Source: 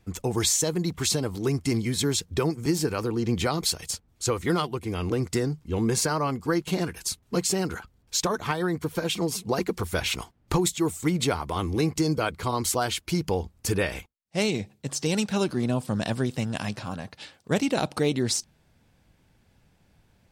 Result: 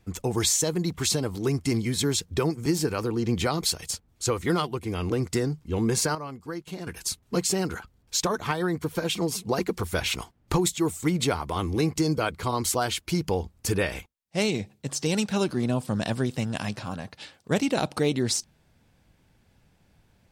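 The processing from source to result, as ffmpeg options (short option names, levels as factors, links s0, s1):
-filter_complex "[0:a]asplit=3[s0][s1][s2];[s0]atrim=end=6.152[s3];[s1]atrim=start=6.148:end=6.872,asetpts=PTS-STARTPTS,volume=0.316[s4];[s2]atrim=start=6.868[s5];[s3][s4]acrossfade=d=0.004:c1=hsin:c2=hsin[s6];[s6][s5]acrossfade=d=0.004:c1=hsin:c2=hsin"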